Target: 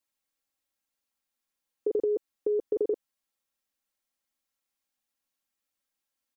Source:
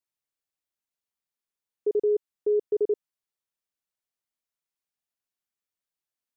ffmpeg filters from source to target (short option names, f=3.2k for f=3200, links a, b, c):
-af "aecho=1:1:3.7:0.65,volume=3.5dB"